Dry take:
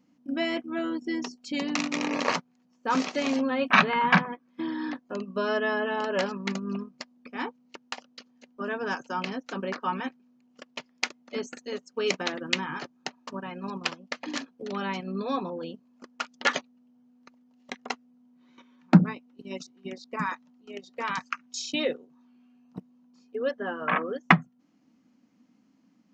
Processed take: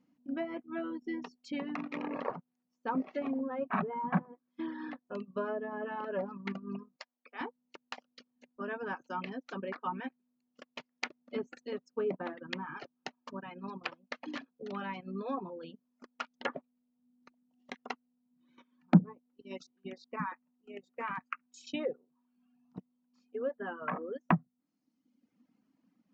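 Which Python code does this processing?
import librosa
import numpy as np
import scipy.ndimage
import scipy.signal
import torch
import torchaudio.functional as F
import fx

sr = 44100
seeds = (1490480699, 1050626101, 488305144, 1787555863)

y = fx.highpass(x, sr, hz=590.0, slope=12, at=(6.96, 7.41))
y = fx.low_shelf(y, sr, hz=430.0, db=4.0, at=(11.05, 12.33))
y = fx.band_shelf(y, sr, hz=4500.0, db=-13.0, octaves=1.1, at=(20.32, 21.67))
y = fx.env_lowpass_down(y, sr, base_hz=820.0, full_db=-22.5)
y = fx.high_shelf(y, sr, hz=6000.0, db=-11.5)
y = fx.dereverb_blind(y, sr, rt60_s=1.0)
y = y * 10.0 ** (-5.5 / 20.0)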